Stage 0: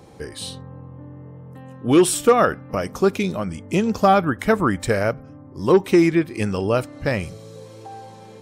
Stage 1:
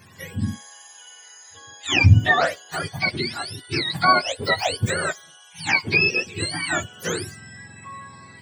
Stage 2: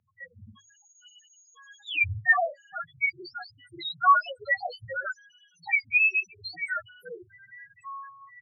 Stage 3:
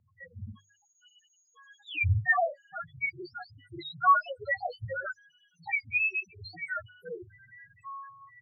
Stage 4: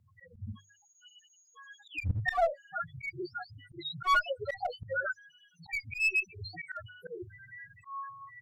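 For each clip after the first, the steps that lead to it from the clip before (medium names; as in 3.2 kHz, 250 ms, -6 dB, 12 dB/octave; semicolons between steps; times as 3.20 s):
spectrum inverted on a logarithmic axis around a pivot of 930 Hz
loudest bins only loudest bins 2; three-band isolator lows -21 dB, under 530 Hz, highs -12 dB, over 3.8 kHz; hum notches 50/100/150 Hz; trim +1.5 dB
tilt EQ -3 dB/octave; trim -2 dB
one-sided clip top -28 dBFS, bottom -17.5 dBFS; harmonic-percussive split harmonic +4 dB; slow attack 144 ms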